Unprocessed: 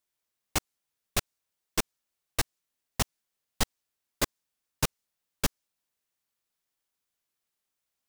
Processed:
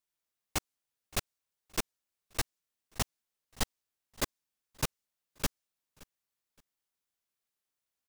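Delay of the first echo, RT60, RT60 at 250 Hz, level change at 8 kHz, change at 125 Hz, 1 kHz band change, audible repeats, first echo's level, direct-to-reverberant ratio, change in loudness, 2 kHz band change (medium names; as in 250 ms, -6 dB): 570 ms, no reverb, no reverb, -4.5 dB, -4.5 dB, -4.5 dB, 1, -23.5 dB, no reverb, -4.5 dB, -4.5 dB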